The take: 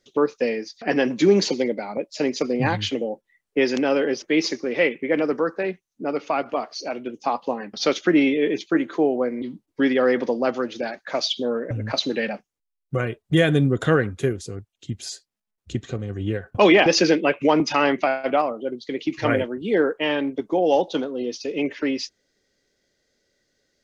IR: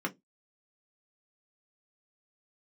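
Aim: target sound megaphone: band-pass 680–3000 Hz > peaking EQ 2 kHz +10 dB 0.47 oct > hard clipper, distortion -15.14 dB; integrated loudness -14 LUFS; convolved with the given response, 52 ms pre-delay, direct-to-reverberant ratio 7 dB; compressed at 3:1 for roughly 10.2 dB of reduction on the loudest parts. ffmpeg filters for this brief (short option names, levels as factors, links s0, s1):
-filter_complex "[0:a]acompressor=threshold=0.0562:ratio=3,asplit=2[s0][s1];[1:a]atrim=start_sample=2205,adelay=52[s2];[s1][s2]afir=irnorm=-1:irlink=0,volume=0.237[s3];[s0][s3]amix=inputs=2:normalize=0,highpass=680,lowpass=3000,equalizer=f=2000:t=o:w=0.47:g=10,asoftclip=type=hard:threshold=0.0794,volume=7.5"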